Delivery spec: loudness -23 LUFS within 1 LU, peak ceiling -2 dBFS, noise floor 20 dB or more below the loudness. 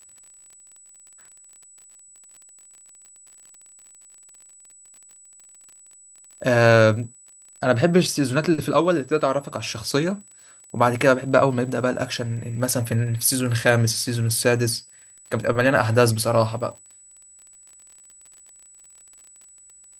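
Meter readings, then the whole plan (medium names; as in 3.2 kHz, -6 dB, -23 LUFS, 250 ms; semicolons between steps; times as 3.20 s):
tick rate 35 per s; steady tone 7.9 kHz; tone level -47 dBFS; loudness -21.0 LUFS; peak level -2.5 dBFS; loudness target -23.0 LUFS
-> de-click; band-stop 7.9 kHz, Q 30; trim -2 dB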